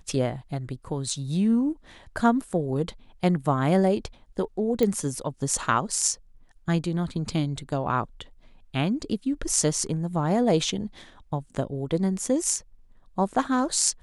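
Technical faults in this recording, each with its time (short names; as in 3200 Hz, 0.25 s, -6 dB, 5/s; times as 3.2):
4.83 pop -12 dBFS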